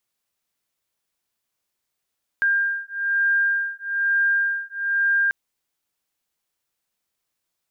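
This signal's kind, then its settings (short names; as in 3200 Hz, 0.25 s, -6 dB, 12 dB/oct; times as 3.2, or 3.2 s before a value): beating tones 1600 Hz, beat 1.1 Hz, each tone -22 dBFS 2.89 s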